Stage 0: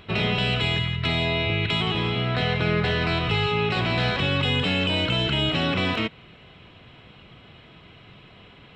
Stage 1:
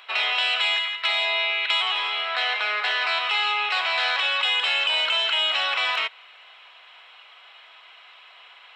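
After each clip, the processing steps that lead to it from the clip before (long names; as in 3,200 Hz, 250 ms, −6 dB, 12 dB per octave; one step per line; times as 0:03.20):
high-pass filter 790 Hz 24 dB per octave
level +4 dB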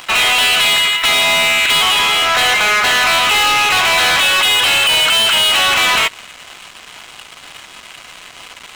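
leveller curve on the samples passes 5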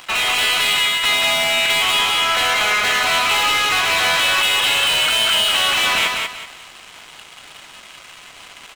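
repeating echo 189 ms, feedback 29%, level −3.5 dB
level −6 dB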